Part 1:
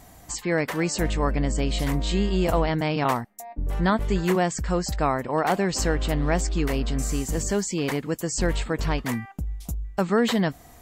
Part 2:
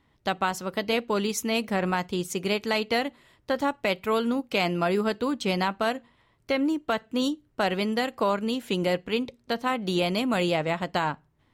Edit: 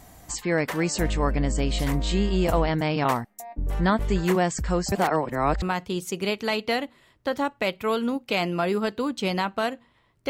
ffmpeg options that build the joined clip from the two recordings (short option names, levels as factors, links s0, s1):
-filter_complex "[0:a]apad=whole_dur=10.29,atrim=end=10.29,asplit=2[s0][s1];[s0]atrim=end=4.922[s2];[s1]atrim=start=4.918:end=5.622,asetpts=PTS-STARTPTS,areverse[s3];[1:a]atrim=start=1.848:end=6.52[s4];[s2][s3]acrossfade=d=0.004:c1=hsin:c2=hsin[s5];[s5][s4]acrossfade=d=0.004:c1=hsin:c2=hsin"